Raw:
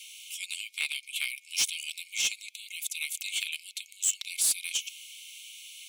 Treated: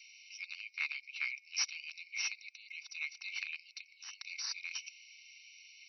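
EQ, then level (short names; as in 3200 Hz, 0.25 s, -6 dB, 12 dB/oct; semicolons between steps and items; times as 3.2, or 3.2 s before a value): brick-wall FIR band-pass 690–5900 Hz; fixed phaser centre 1400 Hz, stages 4; +2.0 dB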